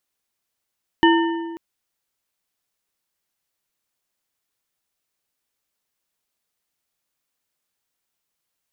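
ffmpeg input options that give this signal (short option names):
-f lavfi -i "aevalsrc='0.266*pow(10,-3*t/1.59)*sin(2*PI*333*t)+0.188*pow(10,-3*t/1.173)*sin(2*PI*918.1*t)+0.133*pow(10,-3*t/0.958)*sin(2*PI*1799.5*t)+0.0944*pow(10,-3*t/0.824)*sin(2*PI*2974.7*t)':d=0.54:s=44100"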